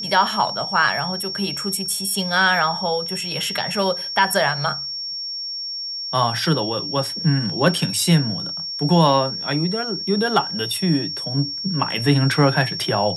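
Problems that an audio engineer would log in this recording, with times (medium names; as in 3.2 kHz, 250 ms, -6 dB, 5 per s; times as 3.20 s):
whine 5.5 kHz -26 dBFS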